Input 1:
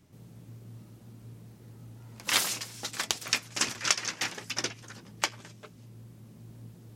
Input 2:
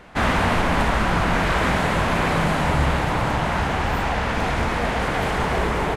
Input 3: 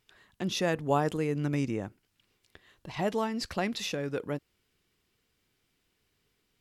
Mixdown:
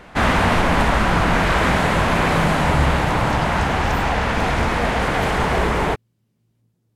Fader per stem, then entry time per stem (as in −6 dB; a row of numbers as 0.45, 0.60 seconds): −18.0, +3.0, −9.5 decibels; 0.00, 0.00, 0.00 seconds